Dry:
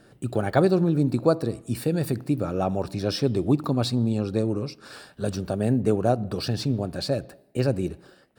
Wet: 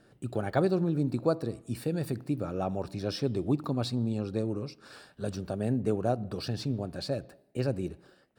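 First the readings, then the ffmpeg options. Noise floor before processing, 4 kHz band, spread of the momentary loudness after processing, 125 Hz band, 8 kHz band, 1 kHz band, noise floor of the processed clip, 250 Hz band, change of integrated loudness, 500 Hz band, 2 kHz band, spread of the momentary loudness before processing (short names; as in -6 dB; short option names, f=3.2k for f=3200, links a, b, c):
-57 dBFS, -7.0 dB, 9 LU, -6.5 dB, -8.0 dB, -6.5 dB, -63 dBFS, -6.5 dB, -6.5 dB, -6.5 dB, -6.5 dB, 9 LU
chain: -af "highshelf=f=8.7k:g=-4,volume=-6.5dB"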